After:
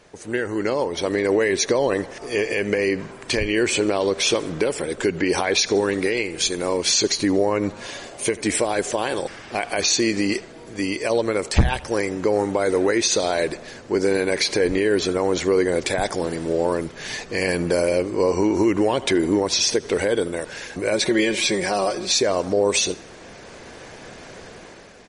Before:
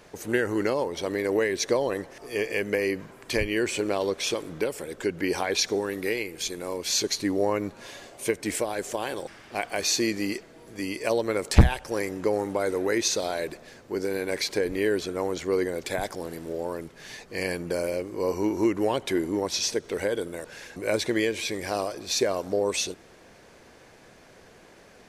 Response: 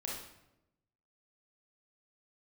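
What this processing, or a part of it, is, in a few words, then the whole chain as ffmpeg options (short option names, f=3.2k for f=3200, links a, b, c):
low-bitrate web radio: -filter_complex "[0:a]asplit=3[a][b][c];[a]afade=t=out:st=20.93:d=0.02[d];[b]aecho=1:1:5.4:0.64,afade=t=in:st=20.93:d=0.02,afade=t=out:st=22.13:d=0.02[e];[c]afade=t=in:st=22.13:d=0.02[f];[d][e][f]amix=inputs=3:normalize=0,aecho=1:1:79|158|237:0.0708|0.0297|0.0125,dynaudnorm=f=190:g=9:m=13dB,alimiter=limit=-9dB:level=0:latency=1:release=93" -ar 44100 -c:a libmp3lame -b:a 40k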